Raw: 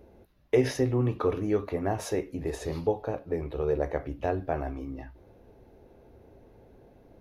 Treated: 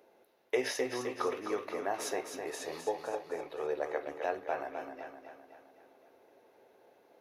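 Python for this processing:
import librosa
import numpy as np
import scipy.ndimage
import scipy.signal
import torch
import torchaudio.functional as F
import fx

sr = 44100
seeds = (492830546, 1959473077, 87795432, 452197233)

y = scipy.signal.sosfilt(scipy.signal.bessel(2, 740.0, 'highpass', norm='mag', fs=sr, output='sos'), x)
y = fx.echo_feedback(y, sr, ms=258, feedback_pct=52, wet_db=-7.0)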